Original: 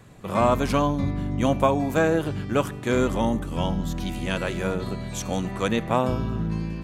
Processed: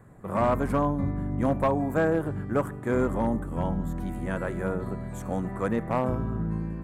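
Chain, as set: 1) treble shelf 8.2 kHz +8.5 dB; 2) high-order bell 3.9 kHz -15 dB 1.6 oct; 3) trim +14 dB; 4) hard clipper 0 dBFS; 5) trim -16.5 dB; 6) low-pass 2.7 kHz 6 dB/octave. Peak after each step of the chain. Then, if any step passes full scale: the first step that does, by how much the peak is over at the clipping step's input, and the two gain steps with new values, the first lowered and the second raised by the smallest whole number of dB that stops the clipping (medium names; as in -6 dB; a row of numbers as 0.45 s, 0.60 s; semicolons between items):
-5.5 dBFS, -6.0 dBFS, +8.0 dBFS, 0.0 dBFS, -16.5 dBFS, -16.5 dBFS; step 3, 8.0 dB; step 3 +6 dB, step 5 -8.5 dB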